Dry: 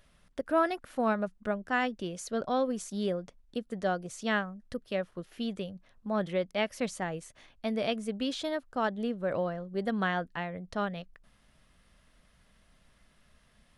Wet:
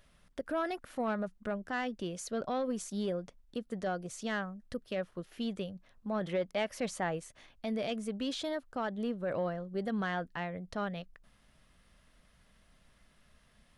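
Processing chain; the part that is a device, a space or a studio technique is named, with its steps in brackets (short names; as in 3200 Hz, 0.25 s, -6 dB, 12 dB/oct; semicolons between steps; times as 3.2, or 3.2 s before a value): soft clipper into limiter (soft clip -20 dBFS, distortion -20 dB; limiter -25.5 dBFS, peak gain reduction 5 dB); 6.21–7.21 bell 1000 Hz +4.5 dB 2.6 oct; gain -1 dB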